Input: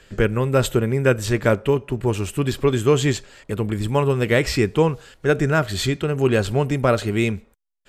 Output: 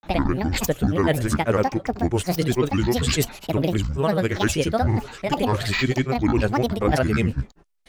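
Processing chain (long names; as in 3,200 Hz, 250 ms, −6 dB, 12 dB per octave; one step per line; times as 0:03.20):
reversed playback
downward compressor 6 to 1, threshold −26 dBFS, peak gain reduction 14.5 dB
reversed playback
granular cloud, grains 20 per second, pitch spread up and down by 12 semitones
level +9 dB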